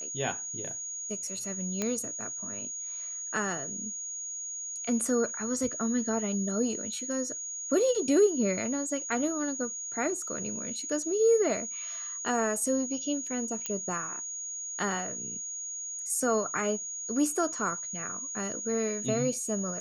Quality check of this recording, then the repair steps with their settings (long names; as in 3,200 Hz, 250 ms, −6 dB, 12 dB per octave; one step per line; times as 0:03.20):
whistle 6,700 Hz −35 dBFS
0:01.82: click −15 dBFS
0:13.66: click −17 dBFS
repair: click removal
notch filter 6,700 Hz, Q 30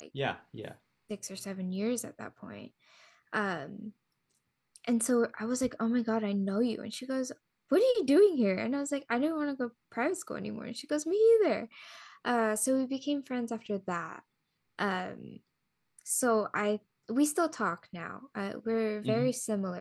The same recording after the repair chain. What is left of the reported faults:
none of them is left